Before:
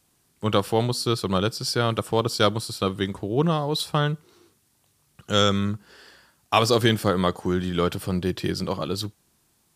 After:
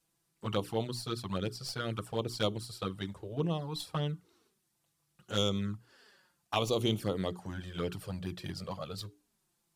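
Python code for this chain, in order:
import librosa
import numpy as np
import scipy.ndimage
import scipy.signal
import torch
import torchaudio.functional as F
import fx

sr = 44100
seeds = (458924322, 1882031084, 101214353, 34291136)

y = fx.tracing_dist(x, sr, depth_ms=0.02)
y = fx.hum_notches(y, sr, base_hz=60, count=7)
y = fx.env_flanger(y, sr, rest_ms=6.1, full_db=-17.0)
y = y * librosa.db_to_amplitude(-9.0)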